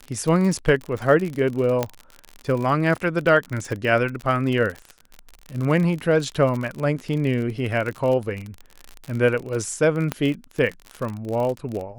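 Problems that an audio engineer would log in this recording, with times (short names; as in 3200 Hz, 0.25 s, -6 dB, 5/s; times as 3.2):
crackle 49/s -26 dBFS
1.83 pop -8 dBFS
10.12 pop -10 dBFS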